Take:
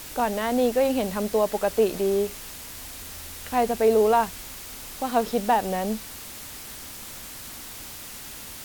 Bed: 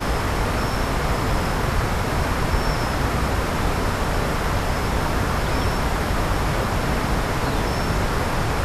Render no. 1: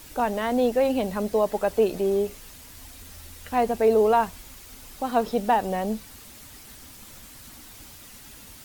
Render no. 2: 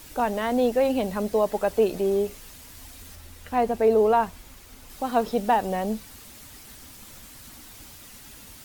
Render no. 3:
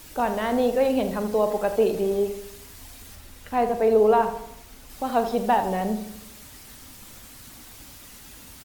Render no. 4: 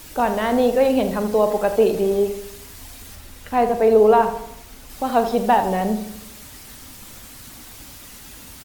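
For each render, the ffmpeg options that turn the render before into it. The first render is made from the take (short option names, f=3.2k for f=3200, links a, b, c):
-af "afftdn=nr=8:nf=-40"
-filter_complex "[0:a]asettb=1/sr,asplit=3[a][b][c];[a]atrim=end=3.154[d];[b]atrim=start=3.15:end=4.9,asetpts=PTS-STARTPTS,afade=t=in:d=0.004:c=qsin,afade=t=out:st=1.746:d=0.004:c=qsin,highshelf=f=2.8k:g=-5[e];[c]atrim=start=4.896[f];[d][e]acrossfade=d=0.004:c1=hsin:c2=qsin[g];[g][f]acrossfade=d=0.004:c1=qsin:c2=hsin"
-filter_complex "[0:a]asplit=2[a][b];[b]adelay=42,volume=-12dB[c];[a][c]amix=inputs=2:normalize=0,asplit=2[d][e];[e]adelay=80,lowpass=f=2k:p=1,volume=-9.5dB,asplit=2[f][g];[g]adelay=80,lowpass=f=2k:p=1,volume=0.54,asplit=2[h][i];[i]adelay=80,lowpass=f=2k:p=1,volume=0.54,asplit=2[j][k];[k]adelay=80,lowpass=f=2k:p=1,volume=0.54,asplit=2[l][m];[m]adelay=80,lowpass=f=2k:p=1,volume=0.54,asplit=2[n][o];[o]adelay=80,lowpass=f=2k:p=1,volume=0.54[p];[d][f][h][j][l][n][p]amix=inputs=7:normalize=0"
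-af "volume=4.5dB"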